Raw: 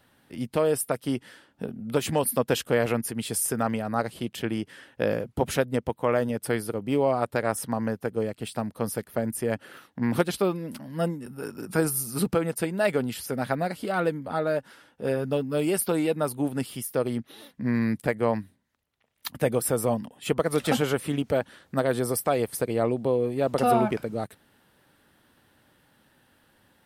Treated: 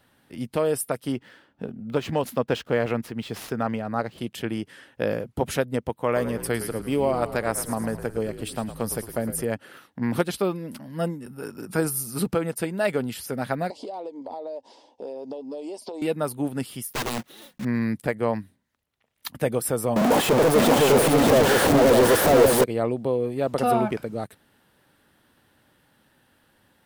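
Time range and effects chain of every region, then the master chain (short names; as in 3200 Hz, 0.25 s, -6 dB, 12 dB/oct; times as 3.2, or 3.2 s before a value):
1.12–4.18 median filter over 5 samples + high shelf 6400 Hz -8 dB
6.05–9.45 high shelf 4100 Hz +5 dB + frequency-shifting echo 0.109 s, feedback 56%, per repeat -59 Hz, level -11.5 dB
13.7–16.02 EQ curve 100 Hz 0 dB, 150 Hz -23 dB, 240 Hz 0 dB, 650 Hz +8 dB, 970 Hz +8 dB, 1400 Hz -23 dB, 2000 Hz -10 dB, 4900 Hz +6 dB, 7300 Hz +4 dB, 13000 Hz -10 dB + compressor 12:1, threshold -31 dBFS + BPF 150–6500 Hz
16.93–17.65 block floating point 3-bit + comb 5.5 ms, depth 36% + wrapped overs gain 22 dB
19.96–22.64 infinite clipping + bell 510 Hz +12.5 dB 2.5 oct + echo 0.595 s -3 dB
whole clip: dry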